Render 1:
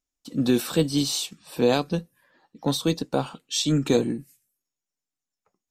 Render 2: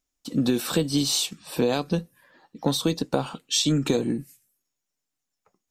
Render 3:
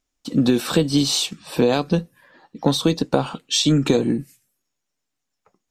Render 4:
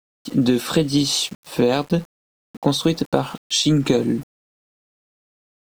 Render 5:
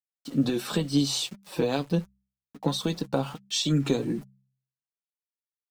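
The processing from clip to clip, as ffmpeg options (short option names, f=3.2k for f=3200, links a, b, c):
-af "acompressor=threshold=-24dB:ratio=6,volume=5dB"
-af "highshelf=f=8.4k:g=-10,volume=5.5dB"
-af "aeval=exprs='val(0)*gte(abs(val(0)),0.0133)':c=same"
-af "bandreject=f=65.61:t=h:w=4,bandreject=f=131.22:t=h:w=4,bandreject=f=196.83:t=h:w=4,flanger=delay=4.8:depth=2.6:regen=36:speed=1.4:shape=sinusoidal,volume=-4dB"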